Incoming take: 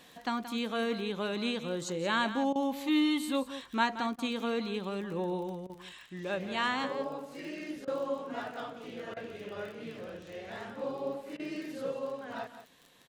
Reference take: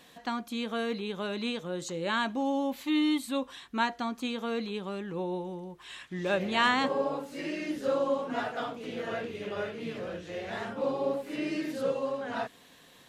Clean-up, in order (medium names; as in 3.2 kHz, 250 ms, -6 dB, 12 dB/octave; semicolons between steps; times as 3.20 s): de-click; interpolate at 2.53/4.16/5.67/7.85/9.14/11.37 s, 24 ms; inverse comb 176 ms -12 dB; gain correction +6 dB, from 5.89 s